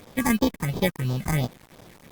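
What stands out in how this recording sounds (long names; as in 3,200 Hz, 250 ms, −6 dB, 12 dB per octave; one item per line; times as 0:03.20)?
aliases and images of a low sample rate 1,400 Hz, jitter 0%
phaser sweep stages 4, 2.9 Hz, lowest notch 540–2,000 Hz
a quantiser's noise floor 8 bits, dither none
Opus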